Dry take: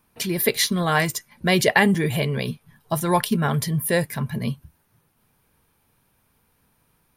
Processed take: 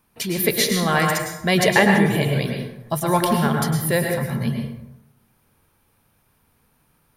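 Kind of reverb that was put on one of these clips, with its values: plate-style reverb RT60 0.88 s, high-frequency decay 0.55×, pre-delay 95 ms, DRR 1.5 dB

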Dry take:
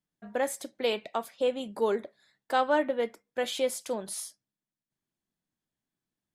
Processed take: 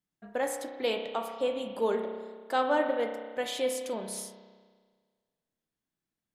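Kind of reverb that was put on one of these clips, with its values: spring tank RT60 1.6 s, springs 31 ms, chirp 30 ms, DRR 4.5 dB; trim -2 dB

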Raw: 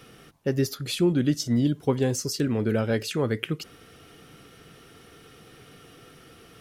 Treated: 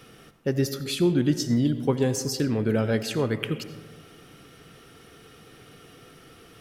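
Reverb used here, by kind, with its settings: algorithmic reverb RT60 1.5 s, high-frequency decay 0.35×, pre-delay 45 ms, DRR 11 dB

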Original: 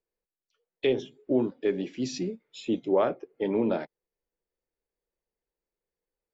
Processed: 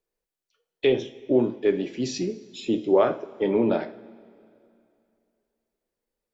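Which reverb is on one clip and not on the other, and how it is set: two-slope reverb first 0.39 s, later 2.6 s, from -18 dB, DRR 8 dB; trim +3.5 dB

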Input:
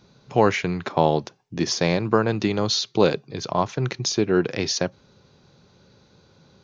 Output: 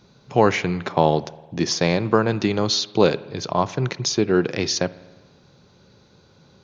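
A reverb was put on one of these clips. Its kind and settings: spring tank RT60 1.3 s, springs 51 ms, chirp 35 ms, DRR 18 dB; trim +1.5 dB

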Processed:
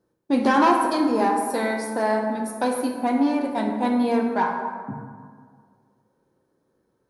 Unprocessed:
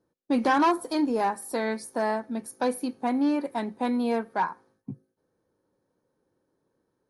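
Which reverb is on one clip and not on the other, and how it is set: plate-style reverb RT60 1.9 s, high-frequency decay 0.45×, DRR 1.5 dB; trim +2.5 dB

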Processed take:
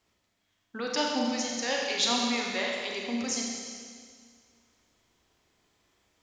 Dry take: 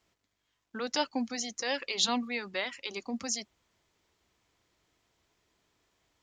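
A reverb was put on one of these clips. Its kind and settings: Schroeder reverb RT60 2 s, combs from 30 ms, DRR -1.5 dB

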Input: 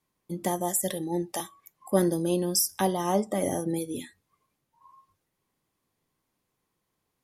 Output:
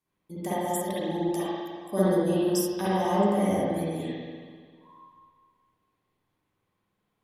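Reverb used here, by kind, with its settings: spring tank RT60 1.8 s, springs 49/59 ms, chirp 25 ms, DRR -10 dB; trim -8 dB

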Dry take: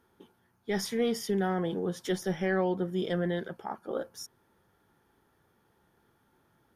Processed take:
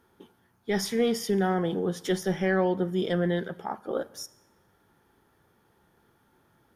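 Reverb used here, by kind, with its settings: Schroeder reverb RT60 0.85 s, combs from 31 ms, DRR 19 dB; trim +3.5 dB

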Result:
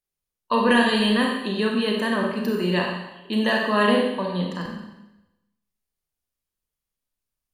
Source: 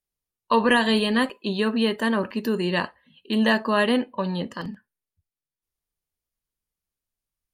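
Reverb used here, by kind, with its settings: Schroeder reverb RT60 0.95 s, combs from 30 ms, DRR 0 dB; trim -2 dB

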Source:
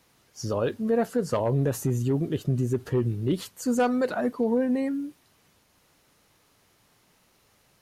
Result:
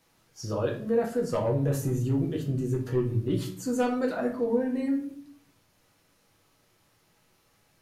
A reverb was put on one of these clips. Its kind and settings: simulated room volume 57 m³, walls mixed, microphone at 0.65 m; trim -5.5 dB

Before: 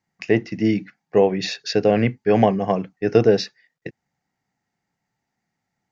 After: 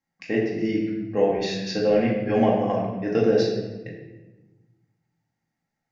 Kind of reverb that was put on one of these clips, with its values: simulated room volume 650 m³, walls mixed, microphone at 2.2 m; trim -9 dB

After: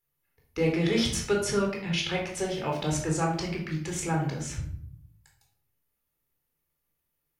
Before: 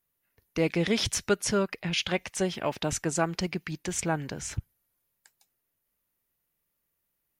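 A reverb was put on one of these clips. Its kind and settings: simulated room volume 1000 m³, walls furnished, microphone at 4.1 m; trim -5.5 dB

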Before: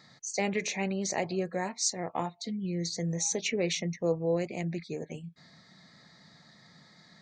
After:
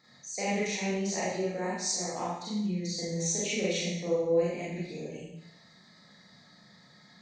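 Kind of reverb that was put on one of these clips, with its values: Schroeder reverb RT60 0.8 s, combs from 30 ms, DRR -8 dB; trim -8.5 dB

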